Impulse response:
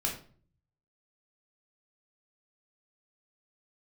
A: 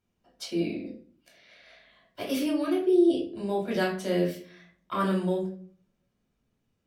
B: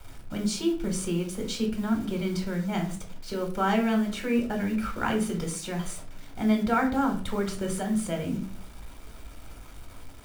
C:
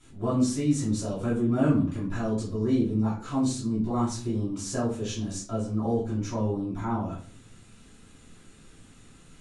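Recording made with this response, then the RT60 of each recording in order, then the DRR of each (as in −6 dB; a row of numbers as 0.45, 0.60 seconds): A; 0.45, 0.45, 0.45 seconds; −2.0, 2.5, −10.5 decibels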